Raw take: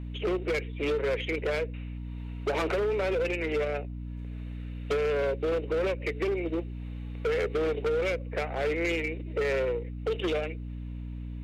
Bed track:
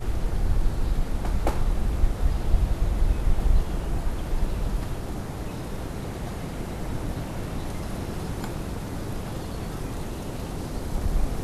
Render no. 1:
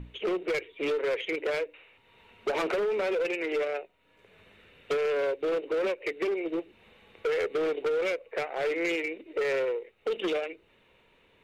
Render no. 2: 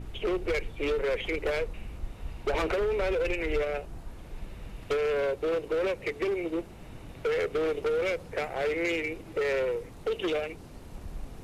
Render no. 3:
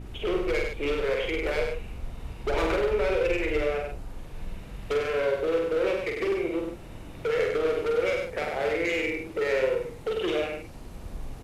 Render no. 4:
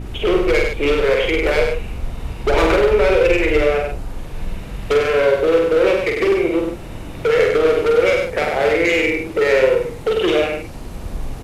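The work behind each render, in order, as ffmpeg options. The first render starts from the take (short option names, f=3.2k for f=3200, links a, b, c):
-af "bandreject=f=60:t=h:w=6,bandreject=f=120:t=h:w=6,bandreject=f=180:t=h:w=6,bandreject=f=240:t=h:w=6,bandreject=f=300:t=h:w=6"
-filter_complex "[1:a]volume=-15dB[a];[0:a][a]amix=inputs=2:normalize=0"
-filter_complex "[0:a]asplit=2[a][b];[b]adelay=46,volume=-4dB[c];[a][c]amix=inputs=2:normalize=0,aecho=1:1:98:0.562"
-af "volume=11dB"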